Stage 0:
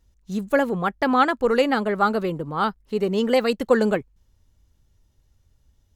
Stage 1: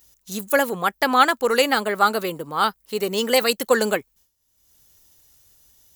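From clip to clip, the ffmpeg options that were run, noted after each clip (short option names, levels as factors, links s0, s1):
-af "aemphasis=mode=production:type=riaa,agate=range=0.0224:threshold=0.00224:ratio=3:detection=peak,acompressor=mode=upward:threshold=0.00891:ratio=2.5,volume=1.33"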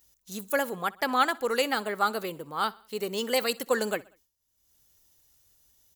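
-af "aecho=1:1:63|126|189:0.0708|0.0368|0.0191,volume=0.398"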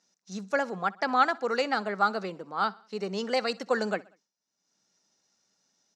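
-af "highpass=f=170:w=0.5412,highpass=f=170:w=1.3066,equalizer=f=190:t=q:w=4:g=8,equalizer=f=720:t=q:w=4:g=6,equalizer=f=1400:t=q:w=4:g=4,equalizer=f=3200:t=q:w=4:g=-7,equalizer=f=5600:t=q:w=4:g=7,lowpass=f=5900:w=0.5412,lowpass=f=5900:w=1.3066,volume=0.794"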